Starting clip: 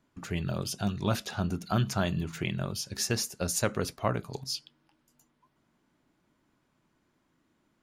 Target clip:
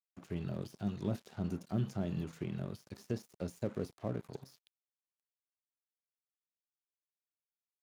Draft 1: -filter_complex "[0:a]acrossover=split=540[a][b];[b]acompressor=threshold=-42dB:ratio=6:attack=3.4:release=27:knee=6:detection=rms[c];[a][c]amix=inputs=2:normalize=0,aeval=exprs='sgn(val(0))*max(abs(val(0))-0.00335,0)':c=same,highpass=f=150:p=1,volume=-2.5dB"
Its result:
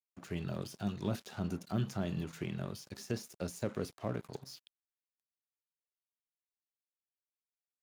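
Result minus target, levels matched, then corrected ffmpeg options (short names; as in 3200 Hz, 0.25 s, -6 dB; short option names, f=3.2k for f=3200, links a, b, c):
compressor: peak gain reduction -7.5 dB
-filter_complex "[0:a]acrossover=split=540[a][b];[b]acompressor=threshold=-51dB:ratio=6:attack=3.4:release=27:knee=6:detection=rms[c];[a][c]amix=inputs=2:normalize=0,aeval=exprs='sgn(val(0))*max(abs(val(0))-0.00335,0)':c=same,highpass=f=150:p=1,volume=-2.5dB"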